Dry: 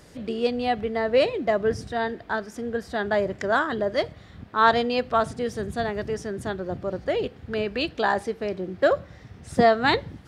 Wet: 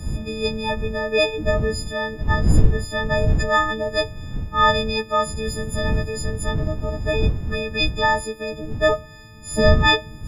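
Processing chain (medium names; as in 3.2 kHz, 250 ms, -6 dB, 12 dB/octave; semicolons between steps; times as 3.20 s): partials quantised in pitch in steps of 6 st; wind noise 92 Hz -22 dBFS; trim -1 dB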